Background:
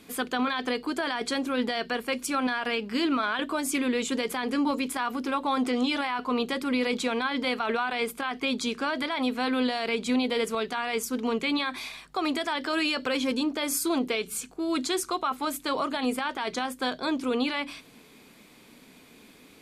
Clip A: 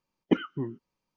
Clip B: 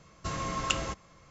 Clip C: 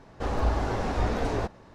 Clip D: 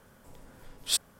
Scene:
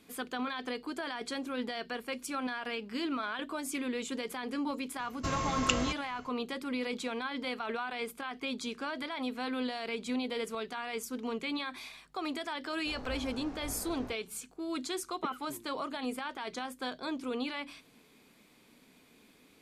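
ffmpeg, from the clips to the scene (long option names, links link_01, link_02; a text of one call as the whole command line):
ffmpeg -i bed.wav -i cue0.wav -i cue1.wav -i cue2.wav -filter_complex "[0:a]volume=-8.5dB[link_01];[1:a]highpass=frequency=350:poles=1[link_02];[2:a]atrim=end=1.3,asetpts=PTS-STARTPTS,afade=type=in:duration=0.004:curve=hsin,afade=type=out:start_time=1.296:duration=0.004:curve=hsin,adelay=4990[link_03];[3:a]atrim=end=1.74,asetpts=PTS-STARTPTS,volume=-17.5dB,afade=type=in:duration=0.004:curve=hsin,afade=type=out:start_time=1.736:duration=0.004:curve=hsin,adelay=12660[link_04];[link_02]atrim=end=1.16,asetpts=PTS-STARTPTS,volume=-12.5dB,afade=type=in:duration=0.004:curve=hsin,afade=type=out:start_time=1.156:duration=0.004:curve=hsin,adelay=657972S[link_05];[link_01][link_03][link_04][link_05]amix=inputs=4:normalize=0" out.wav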